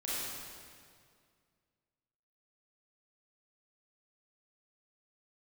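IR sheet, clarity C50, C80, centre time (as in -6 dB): -5.0 dB, -2.0 dB, 154 ms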